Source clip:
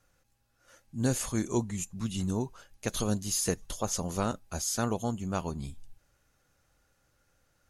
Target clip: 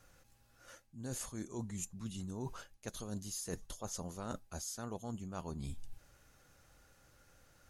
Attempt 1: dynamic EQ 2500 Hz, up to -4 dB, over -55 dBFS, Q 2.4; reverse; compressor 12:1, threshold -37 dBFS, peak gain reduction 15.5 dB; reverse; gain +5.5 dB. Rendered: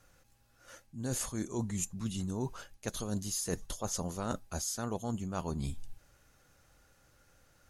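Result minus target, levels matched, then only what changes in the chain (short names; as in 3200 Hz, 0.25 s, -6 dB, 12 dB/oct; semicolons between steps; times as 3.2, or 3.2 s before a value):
compressor: peak gain reduction -7 dB
change: compressor 12:1, threshold -44.5 dBFS, peak gain reduction 22.5 dB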